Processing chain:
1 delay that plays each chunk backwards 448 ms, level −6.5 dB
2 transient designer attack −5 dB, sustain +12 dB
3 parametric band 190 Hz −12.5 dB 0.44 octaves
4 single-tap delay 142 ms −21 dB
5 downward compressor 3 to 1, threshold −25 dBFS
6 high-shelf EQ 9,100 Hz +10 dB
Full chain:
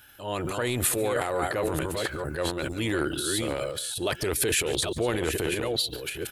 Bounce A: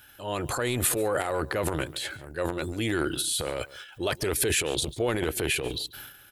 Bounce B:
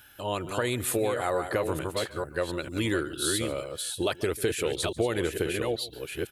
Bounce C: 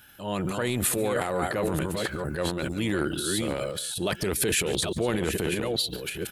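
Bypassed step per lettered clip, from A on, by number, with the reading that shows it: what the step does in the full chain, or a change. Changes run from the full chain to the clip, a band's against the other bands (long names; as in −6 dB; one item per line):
1, change in momentary loudness spread +4 LU
2, 8 kHz band −3.0 dB
3, 250 Hz band +2.5 dB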